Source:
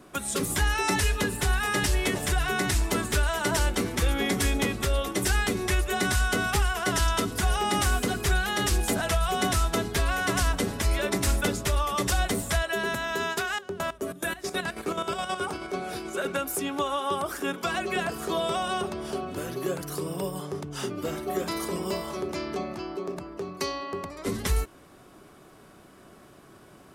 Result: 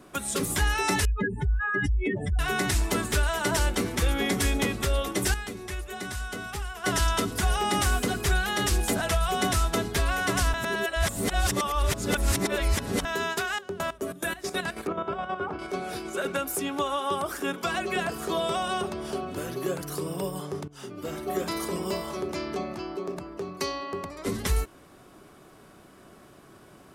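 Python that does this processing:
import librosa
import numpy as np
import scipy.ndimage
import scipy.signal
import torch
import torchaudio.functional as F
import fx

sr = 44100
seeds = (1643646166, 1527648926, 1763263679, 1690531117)

y = fx.spec_expand(x, sr, power=3.1, at=(1.05, 2.39))
y = fx.lowpass(y, sr, hz=1700.0, slope=12, at=(14.87, 15.59))
y = fx.edit(y, sr, fx.clip_gain(start_s=5.34, length_s=1.5, db=-9.5),
    fx.reverse_span(start_s=10.54, length_s=2.51),
    fx.fade_in_from(start_s=20.68, length_s=0.62, floor_db=-17.0), tone=tone)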